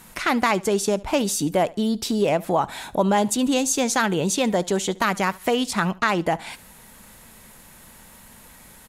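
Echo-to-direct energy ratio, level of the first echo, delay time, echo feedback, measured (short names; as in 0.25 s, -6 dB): -21.5 dB, -22.0 dB, 72 ms, 27%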